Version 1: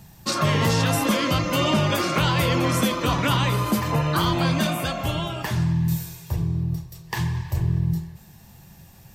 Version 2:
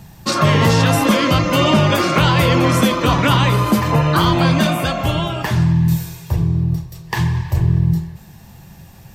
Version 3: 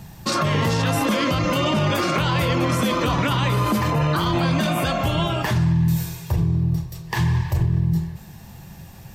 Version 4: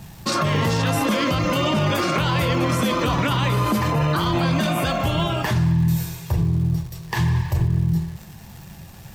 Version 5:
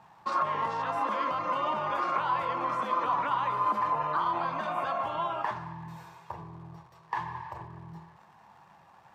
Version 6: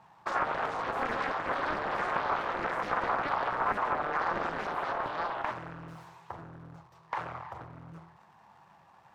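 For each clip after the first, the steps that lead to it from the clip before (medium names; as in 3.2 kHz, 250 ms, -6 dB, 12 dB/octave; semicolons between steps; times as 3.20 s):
treble shelf 4.7 kHz -5.5 dB; trim +7.5 dB
peak limiter -12.5 dBFS, peak gain reduction 10.5 dB
crackle 370 per s -36 dBFS
band-pass filter 1 kHz, Q 2.9
loudspeaker Doppler distortion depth 0.84 ms; trim -2 dB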